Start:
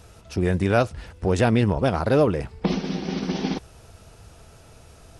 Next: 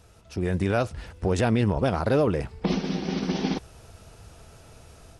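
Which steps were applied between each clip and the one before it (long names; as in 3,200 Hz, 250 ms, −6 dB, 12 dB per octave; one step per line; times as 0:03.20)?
brickwall limiter −13.5 dBFS, peak gain reduction 5 dB
automatic gain control gain up to 6 dB
level −6.5 dB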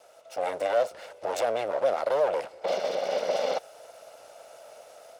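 lower of the sound and its delayed copy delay 1.4 ms
brickwall limiter −21.5 dBFS, peak gain reduction 8 dB
high-pass with resonance 560 Hz, resonance Q 4.4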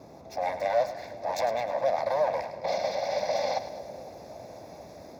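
phaser with its sweep stopped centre 2,000 Hz, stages 8
noise in a band 61–750 Hz −52 dBFS
echo with a time of its own for lows and highs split 630 Hz, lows 503 ms, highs 104 ms, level −11.5 dB
level +2.5 dB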